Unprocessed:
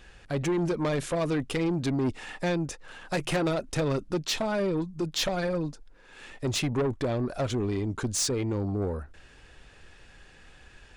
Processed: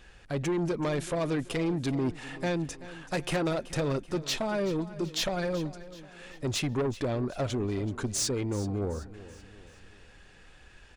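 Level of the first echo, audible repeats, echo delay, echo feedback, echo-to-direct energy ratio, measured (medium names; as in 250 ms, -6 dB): -16.5 dB, 3, 381 ms, 46%, -15.5 dB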